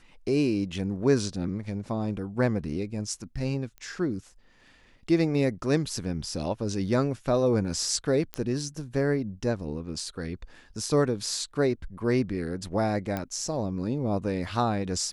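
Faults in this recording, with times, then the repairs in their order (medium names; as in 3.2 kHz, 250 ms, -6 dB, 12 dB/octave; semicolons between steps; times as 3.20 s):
3.78 s: pop -30 dBFS
8.34 s: pop -17 dBFS
13.17 s: pop -17 dBFS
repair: de-click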